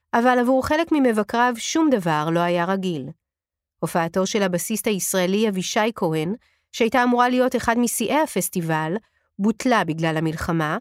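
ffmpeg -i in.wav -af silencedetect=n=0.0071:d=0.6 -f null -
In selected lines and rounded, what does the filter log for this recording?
silence_start: 3.12
silence_end: 3.83 | silence_duration: 0.71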